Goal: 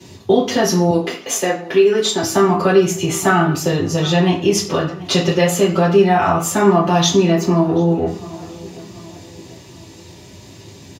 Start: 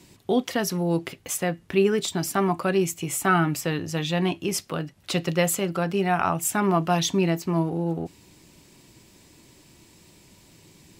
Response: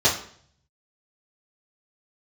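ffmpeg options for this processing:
-filter_complex "[0:a]asettb=1/sr,asplit=3[s0][s1][s2];[s0]atrim=end=3.414[s3];[s1]atrim=start=3.41:end=4.12,asetpts=PTS-STARTPTS,afade=t=in:d=0.004:c=qsin,afade=t=out:st=0.706:d=0.004:c=qsin,equalizer=f=2000:t=o:w=1.8:g=-6.5[s4];[s2]atrim=start=4.116[s5];[s3][s4]acrossfade=d=0.004:c1=hsin:c2=qsin[s6];[s6][s5]acrossfade=d=0.004:c1=qsin:c2=hsin,asplit=2[s7][s8];[s8]adelay=735,lowpass=f=2500:p=1,volume=0.0794,asplit=2[s9][s10];[s10]adelay=735,lowpass=f=2500:p=1,volume=0.46,asplit=2[s11][s12];[s12]adelay=735,lowpass=f=2500:p=1,volume=0.46[s13];[s7][s9][s11][s13]amix=inputs=4:normalize=0,acompressor=threshold=0.0501:ratio=2.5,asettb=1/sr,asplit=3[s14][s15][s16];[s14]atrim=end=0.904[s17];[s15]atrim=start=0.9:end=2.23,asetpts=PTS-STARTPTS,afade=t=in:d=0.004:c=qsin,afade=t=out:st=1.326:d=0.004:c=qsin,highpass=310[s18];[s16]atrim=start=2.226[s19];[s17][s18]acrossfade=d=0.004:c1=hsin:c2=qsin[s20];[s20][s19]acrossfade=d=0.004:c1=qsin:c2=hsin[s21];[1:a]atrim=start_sample=2205,afade=t=out:st=0.31:d=0.01,atrim=end_sample=14112[s22];[s21][s22]afir=irnorm=-1:irlink=0,volume=0.596"

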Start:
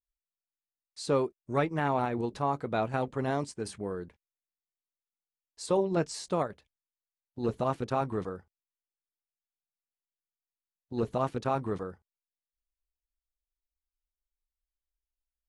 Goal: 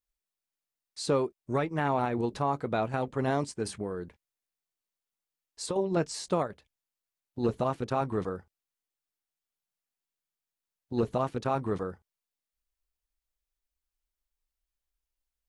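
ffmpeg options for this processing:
-filter_complex "[0:a]alimiter=limit=0.0944:level=0:latency=1:release=408,asettb=1/sr,asplit=3[s0][s1][s2];[s0]atrim=end=3.814[s3];[s1]atrim=start=3.81:end=5.76,asetpts=PTS-STARTPTS,afade=t=in:d=0.004:c=qsin,afade=t=out:st=1.946:d=0.004:c=qsin,acompressor=threshold=0.0178:ratio=3[s4];[s2]atrim=start=5.756[s5];[s3][s4]acrossfade=d=0.004:c1=hsin:c2=qsin[s6];[s6][s5]acrossfade=d=0.004:c1=qsin:c2=hsin,volume=1.5"

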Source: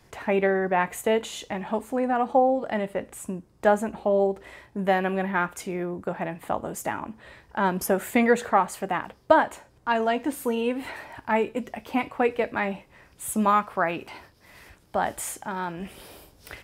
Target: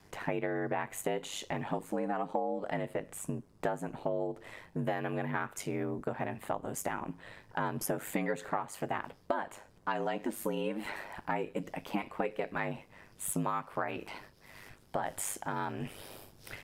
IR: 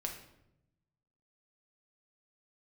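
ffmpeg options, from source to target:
-af "aeval=exprs='val(0)*sin(2*PI*50*n/s)':c=same,acompressor=threshold=0.0316:ratio=6"

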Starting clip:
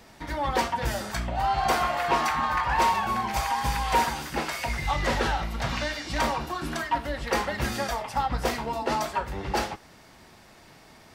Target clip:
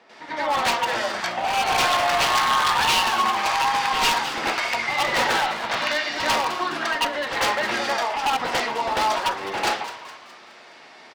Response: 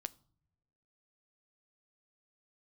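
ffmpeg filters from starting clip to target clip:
-filter_complex "[0:a]highpass=380,lowpass=3300,aeval=exprs='0.0708*(abs(mod(val(0)/0.0708+3,4)-2)-1)':c=same,asplit=6[s0][s1][s2][s3][s4][s5];[s1]adelay=208,afreqshift=120,volume=0.224[s6];[s2]adelay=416,afreqshift=240,volume=0.104[s7];[s3]adelay=624,afreqshift=360,volume=0.0473[s8];[s4]adelay=832,afreqshift=480,volume=0.0219[s9];[s5]adelay=1040,afreqshift=600,volume=0.01[s10];[s0][s6][s7][s8][s9][s10]amix=inputs=6:normalize=0,asplit=2[s11][s12];[1:a]atrim=start_sample=2205,highshelf=f=2700:g=10.5,adelay=95[s13];[s12][s13]afir=irnorm=-1:irlink=0,volume=2.37[s14];[s11][s14]amix=inputs=2:normalize=0"

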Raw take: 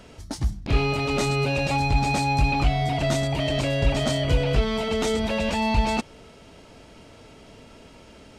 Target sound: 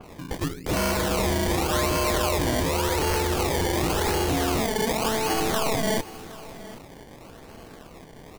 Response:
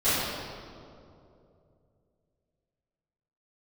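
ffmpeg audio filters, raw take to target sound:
-filter_complex "[0:a]asettb=1/sr,asplit=3[s0][s1][s2];[s0]atrim=end=4.664[s3];[s1]atrim=start=4.66:end=5.34,asetpts=PTS-STARTPTS,afade=t=in:d=0.004:c=qsin,afade=t=out:st=0.676:d=0.004:c=qsin,lowshelf=f=470:t=q:w=3:g=-7.5[s4];[s2]atrim=start=5.336[s5];[s3][s4]acrossfade=d=0.004:c1=hsin:c2=qsin[s6];[s6][s5]acrossfade=d=0.004:c1=qsin:c2=hsin,acrossover=split=110|660|2700[s7][s8][s9][s10];[s7]acompressor=threshold=0.02:ratio=6[s11];[s11][s8][s9][s10]amix=inputs=4:normalize=0,asoftclip=type=hard:threshold=0.0596,aeval=exprs='val(0)*sin(2*PI*220*n/s)':c=same,acrusher=samples=23:mix=1:aa=0.000001:lfo=1:lforange=23:lforate=0.89,aecho=1:1:769:0.133,adynamicequalizer=threshold=0.00355:dfrequency=3500:dqfactor=0.7:tfrequency=3500:tqfactor=0.7:attack=5:release=100:ratio=0.375:range=2:mode=boostabove:tftype=highshelf,volume=2"

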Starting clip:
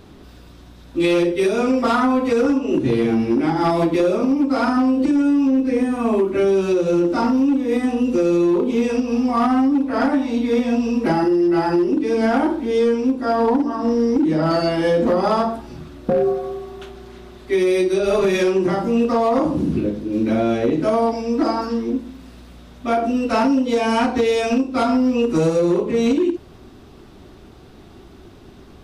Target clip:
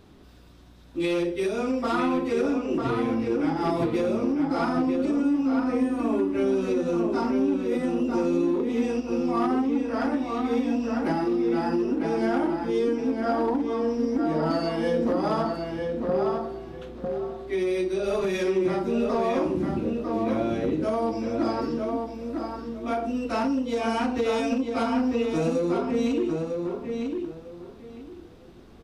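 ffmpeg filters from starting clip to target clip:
-filter_complex "[0:a]asettb=1/sr,asplit=3[s0][s1][s2];[s0]atrim=end=15.794[s3];[s1]atrim=start=15.79:end=17.99,asetpts=PTS-STARTPTS,afade=t=in:d=0.004:c=qsin,afade=t=out:st=2.196:d=0.004:c=qsin,highshelf=f=6200:g=-5.5[s4];[s2]atrim=start=17.986[s5];[s3][s4]acrossfade=d=0.004:c1=hsin:c2=qsin[s6];[s6][s5]acrossfade=d=0.004:c1=qsin:c2=hsin,asplit=2[s7][s8];[s8]adelay=950,lowpass=f=3400:p=1,volume=0.631,asplit=2[s9][s10];[s10]adelay=950,lowpass=f=3400:p=1,volume=0.23,asplit=2[s11][s12];[s12]adelay=950,lowpass=f=3400:p=1,volume=0.23[s13];[s7][s9][s11][s13]amix=inputs=4:normalize=0,volume=0.376"

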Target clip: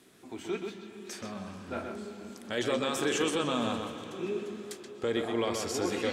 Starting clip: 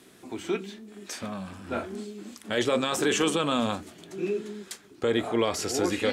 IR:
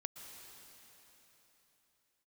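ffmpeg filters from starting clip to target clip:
-filter_complex "[0:a]asplit=2[s0][s1];[1:a]atrim=start_sample=2205,lowpass=5600,adelay=128[s2];[s1][s2]afir=irnorm=-1:irlink=0,volume=0.841[s3];[s0][s3]amix=inputs=2:normalize=0,volume=0.531"

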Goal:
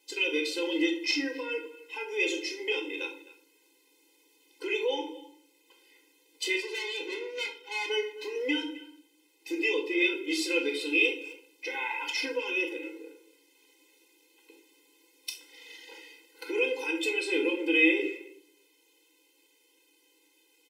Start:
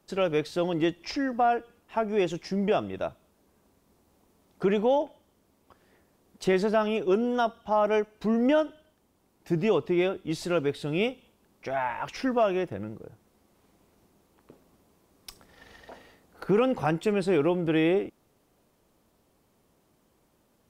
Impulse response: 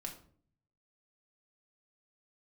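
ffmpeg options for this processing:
-filter_complex "[0:a]asettb=1/sr,asplit=3[s0][s1][s2];[s0]atrim=end=6.584[s3];[s1]atrim=start=6.58:end=7.9,asetpts=PTS-STARTPTS,afade=t=in:d=0.004:c=qsin,afade=t=out:st=1.316:d=0.004:c=qsin,aeval=exprs='(tanh(35.5*val(0)+0.6)-tanh(0.6))/35.5':c=same[s4];[s2]atrim=start=7.896[s5];[s3][s4]acrossfade=d=0.004:c1=hsin:c2=qsin[s6];[s6][s5]acrossfade=d=0.004:c1=qsin:c2=hsin,alimiter=limit=0.106:level=0:latency=1:release=135,highshelf=f=1800:t=q:w=3:g=10,asplit=2[s7][s8];[s8]adelay=260,highpass=300,lowpass=3400,asoftclip=type=hard:threshold=0.158,volume=0.126[s9];[s7][s9]amix=inputs=2:normalize=0[s10];[1:a]atrim=start_sample=2205[s11];[s10][s11]afir=irnorm=-1:irlink=0,afftfilt=real='re*eq(mod(floor(b*sr/1024/270),2),1)':imag='im*eq(mod(floor(b*sr/1024/270),2),1)':win_size=1024:overlap=0.75,volume=1.33"

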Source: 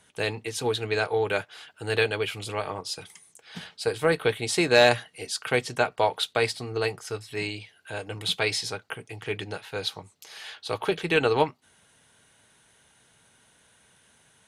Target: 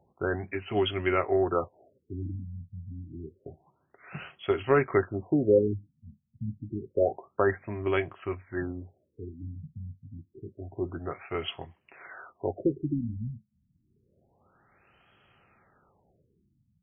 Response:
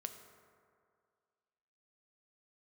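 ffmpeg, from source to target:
-af "asetrate=37926,aresample=44100,afftfilt=real='re*lt(b*sr/1024,230*pow(3400/230,0.5+0.5*sin(2*PI*0.28*pts/sr)))':imag='im*lt(b*sr/1024,230*pow(3400/230,0.5+0.5*sin(2*PI*0.28*pts/sr)))':win_size=1024:overlap=0.75"

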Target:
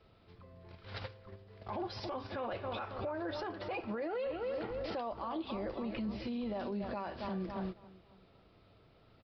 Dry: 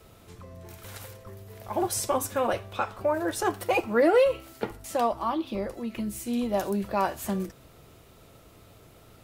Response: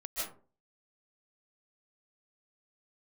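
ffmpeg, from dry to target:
-filter_complex "[0:a]asplit=2[s0][s1];[s1]adelay=273,lowpass=f=2300:p=1,volume=0.251,asplit=2[s2][s3];[s3]adelay=273,lowpass=f=2300:p=1,volume=0.45,asplit=2[s4][s5];[s5]adelay=273,lowpass=f=2300:p=1,volume=0.45,asplit=2[s6][s7];[s7]adelay=273,lowpass=f=2300:p=1,volume=0.45,asplit=2[s8][s9];[s9]adelay=273,lowpass=f=2300:p=1,volume=0.45[s10];[s0][s2][s4][s6][s8][s10]amix=inputs=6:normalize=0,agate=range=0.141:threshold=0.01:ratio=16:detection=peak,acompressor=threshold=0.0126:ratio=12,aresample=11025,aresample=44100,alimiter=level_in=4.73:limit=0.0631:level=0:latency=1:release=10,volume=0.211,volume=2.11"

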